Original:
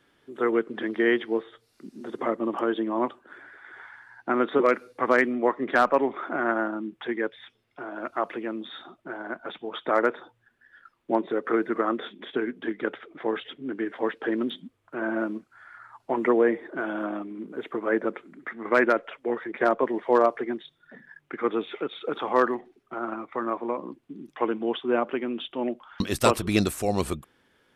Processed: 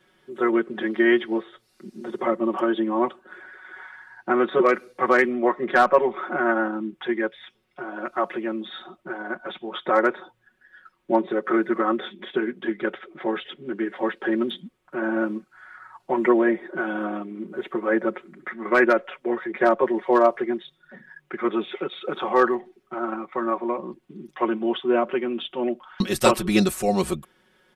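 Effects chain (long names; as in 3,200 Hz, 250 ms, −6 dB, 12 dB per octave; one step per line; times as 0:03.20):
comb filter 5.4 ms, depth 100%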